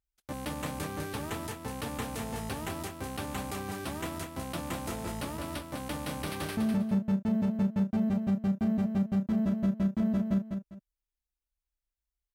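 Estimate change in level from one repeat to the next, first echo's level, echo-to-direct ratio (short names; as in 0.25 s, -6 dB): -11.5 dB, -6.0 dB, -5.5 dB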